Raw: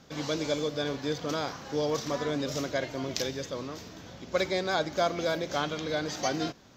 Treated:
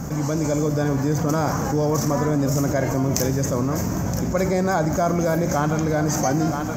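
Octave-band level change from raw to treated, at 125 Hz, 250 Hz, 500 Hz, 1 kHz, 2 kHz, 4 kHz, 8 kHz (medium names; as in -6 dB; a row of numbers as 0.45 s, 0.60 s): +18.0 dB, +13.0 dB, +7.0 dB, +9.0 dB, +4.5 dB, -2.0 dB, +12.0 dB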